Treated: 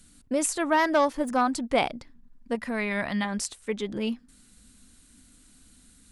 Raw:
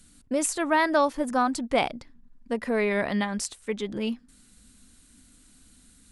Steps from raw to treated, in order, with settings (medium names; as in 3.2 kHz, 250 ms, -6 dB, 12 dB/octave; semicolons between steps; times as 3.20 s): 0.72–1.41 s: self-modulated delay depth 0.059 ms; 2.55–3.25 s: peaking EQ 440 Hz -10 dB 0.92 oct